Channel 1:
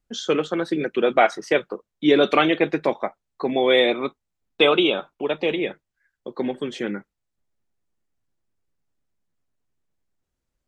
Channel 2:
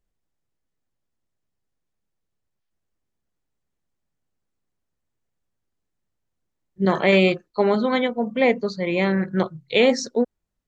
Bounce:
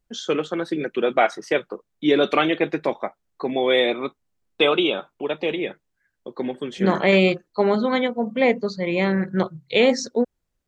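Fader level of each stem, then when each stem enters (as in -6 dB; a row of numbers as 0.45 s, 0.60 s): -1.5 dB, 0.0 dB; 0.00 s, 0.00 s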